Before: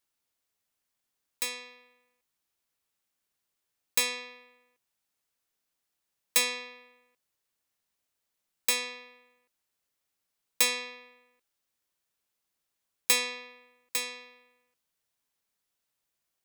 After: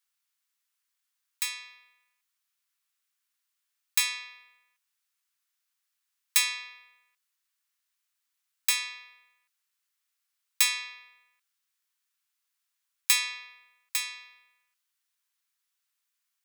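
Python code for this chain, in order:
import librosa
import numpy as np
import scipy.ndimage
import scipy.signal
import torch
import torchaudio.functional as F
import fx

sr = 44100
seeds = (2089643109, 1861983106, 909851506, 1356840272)

y = scipy.signal.sosfilt(scipy.signal.butter(4, 1100.0, 'highpass', fs=sr, output='sos'), x)
y = y * 10.0 ** (1.5 / 20.0)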